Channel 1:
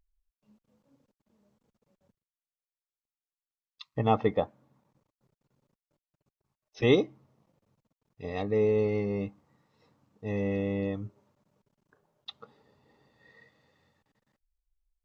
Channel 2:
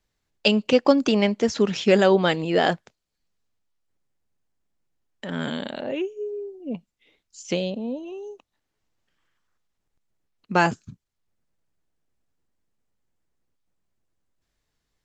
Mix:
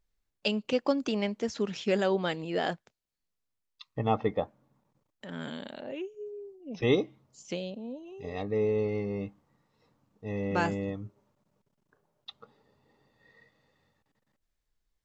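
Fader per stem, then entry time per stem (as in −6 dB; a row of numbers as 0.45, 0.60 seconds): −2.5, −10.0 decibels; 0.00, 0.00 seconds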